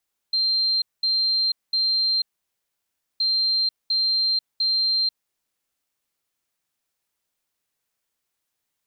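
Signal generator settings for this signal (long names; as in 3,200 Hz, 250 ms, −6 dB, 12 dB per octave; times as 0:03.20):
beeps in groups sine 4,160 Hz, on 0.49 s, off 0.21 s, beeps 3, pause 0.98 s, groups 2, −18.5 dBFS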